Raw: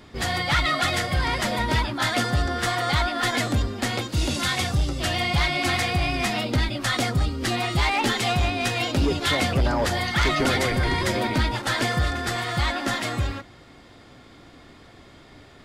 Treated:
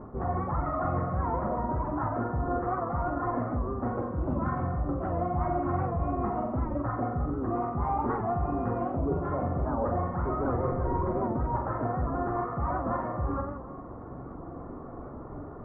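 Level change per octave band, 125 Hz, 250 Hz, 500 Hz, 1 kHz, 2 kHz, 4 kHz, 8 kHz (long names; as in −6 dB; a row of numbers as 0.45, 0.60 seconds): −5.5 dB, −3.5 dB, −3.0 dB, −3.5 dB, −21.0 dB, below −40 dB, below −40 dB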